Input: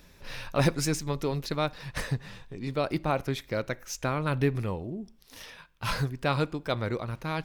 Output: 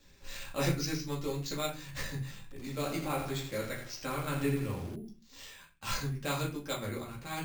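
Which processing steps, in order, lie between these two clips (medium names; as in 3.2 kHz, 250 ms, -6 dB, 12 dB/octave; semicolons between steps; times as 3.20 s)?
pre-emphasis filter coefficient 0.8; gate with hold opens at -54 dBFS; reverberation RT60 0.30 s, pre-delay 4 ms, DRR -4.5 dB; careless resampling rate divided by 4×, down filtered, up hold; 2.42–4.96 s: bit-crushed delay 83 ms, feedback 55%, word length 8-bit, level -7 dB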